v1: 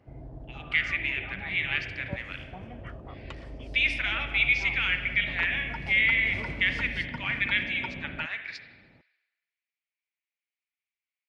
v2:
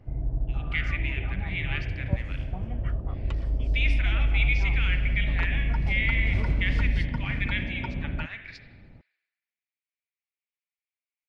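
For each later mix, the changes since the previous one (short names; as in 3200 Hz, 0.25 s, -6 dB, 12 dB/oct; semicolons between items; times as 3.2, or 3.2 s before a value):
speech -5.0 dB; master: remove HPF 350 Hz 6 dB/oct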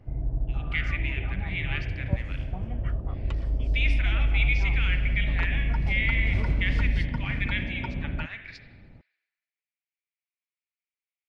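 none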